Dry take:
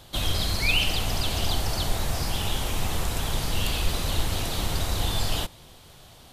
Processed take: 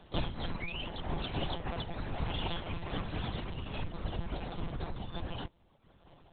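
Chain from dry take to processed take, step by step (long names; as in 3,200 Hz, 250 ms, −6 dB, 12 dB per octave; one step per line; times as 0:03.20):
sub-octave generator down 2 octaves, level −5 dB
reverb reduction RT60 0.93 s
low-pass filter 1,600 Hz 6 dB per octave, from 0:01.18 3,100 Hz, from 0:03.50 1,200 Hz
downward compressor 4 to 1, threshold −25 dBFS, peak gain reduction 7 dB
notch comb filter 460 Hz
one-pitch LPC vocoder at 8 kHz 170 Hz
amplitude modulation by smooth noise, depth 65%
level +1 dB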